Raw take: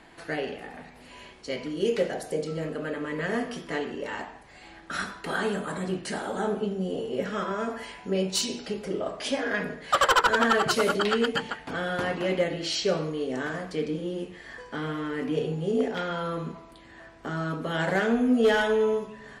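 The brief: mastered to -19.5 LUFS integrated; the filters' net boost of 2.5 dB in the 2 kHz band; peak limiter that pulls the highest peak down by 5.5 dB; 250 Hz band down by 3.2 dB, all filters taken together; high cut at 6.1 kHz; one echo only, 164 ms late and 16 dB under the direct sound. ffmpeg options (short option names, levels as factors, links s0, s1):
-af "lowpass=6100,equalizer=f=250:t=o:g=-4,equalizer=f=2000:t=o:g=3.5,alimiter=limit=0.15:level=0:latency=1,aecho=1:1:164:0.158,volume=2.99"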